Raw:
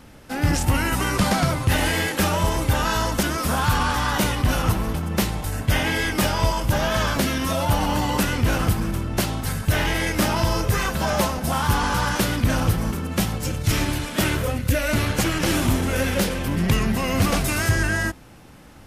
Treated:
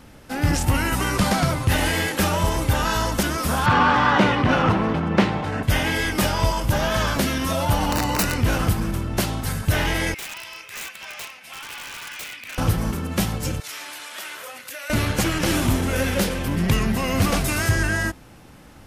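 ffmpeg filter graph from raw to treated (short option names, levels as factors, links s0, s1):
-filter_complex "[0:a]asettb=1/sr,asplit=3[s0][s1][s2];[s0]atrim=end=3.664[s3];[s1]atrim=start=3.66:end=5.63,asetpts=PTS-STARTPTS,afade=t=in:d=0.004:c=qsin,afade=t=out:st=1.966:d=0.004:c=qsin,acontrast=83,highpass=150,lowpass=2600[s4];[s2]atrim=start=5.626[s5];[s3][s4]acrossfade=d=0.004:c1=hsin:c2=qsin[s6];[s6][s5]acrossfade=d=0.004:c1=qsin:c2=hsin,asettb=1/sr,asplit=3[s7][s8][s9];[s7]atrim=end=7.924[s10];[s8]atrim=start=7.92:end=8.41,asetpts=PTS-STARTPTS,afade=t=in:d=0.004:c=qsin,afade=t=out:st=0.486:d=0.004:c=qsin,aeval=exprs='(mod(4.73*val(0)+1,2)-1)/4.73':c=same,asuperstop=centerf=3300:order=4:qfactor=7.1[s11];[s9]atrim=start=8.406[s12];[s10][s11]acrossfade=d=0.004:c1=hsin:c2=qsin[s13];[s13][s12]acrossfade=d=0.004:c1=qsin:c2=hsin,asettb=1/sr,asplit=3[s14][s15][s16];[s14]atrim=end=10.144[s17];[s15]atrim=start=10.14:end=12.58,asetpts=PTS-STARTPTS,afade=t=in:d=0.004:c=qsin,afade=t=out:st=2.436:d=0.004:c=qsin,bandpass=f=2400:t=q:w=4,aemphasis=mode=production:type=50kf,aeval=exprs='(mod(22.4*val(0)+1,2)-1)/22.4':c=same[s18];[s16]atrim=start=12.576[s19];[s17][s18]acrossfade=d=0.004:c1=hsin:c2=qsin[s20];[s20][s19]acrossfade=d=0.004:c1=qsin:c2=hsin,asettb=1/sr,asplit=3[s21][s22][s23];[s21]atrim=end=13.604[s24];[s22]atrim=start=13.6:end=14.9,asetpts=PTS-STARTPTS,afade=t=in:d=0.004:c=qsin,afade=t=out:st=1.296:d=0.004:c=qsin,highpass=890,acompressor=threshold=0.0224:ratio=3:attack=3.2:release=140:knee=1:detection=peak[s25];[s23]atrim=start=14.896[s26];[s24][s25]acrossfade=d=0.004:c1=hsin:c2=qsin[s27];[s27][s26]acrossfade=d=0.004:c1=qsin:c2=hsin"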